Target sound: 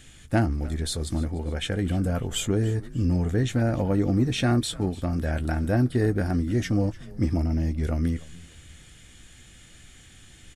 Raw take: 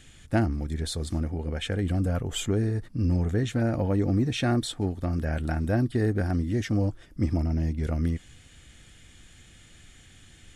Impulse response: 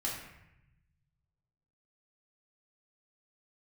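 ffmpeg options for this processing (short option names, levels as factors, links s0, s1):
-filter_complex "[0:a]highshelf=f=8700:g=5,asplit=2[s0][s1];[s1]adelay=16,volume=0.251[s2];[s0][s2]amix=inputs=2:normalize=0,asplit=2[s3][s4];[s4]asplit=3[s5][s6][s7];[s5]adelay=296,afreqshift=-80,volume=0.106[s8];[s6]adelay=592,afreqshift=-160,volume=0.0437[s9];[s7]adelay=888,afreqshift=-240,volume=0.0178[s10];[s8][s9][s10]amix=inputs=3:normalize=0[s11];[s3][s11]amix=inputs=2:normalize=0,volume=1.19"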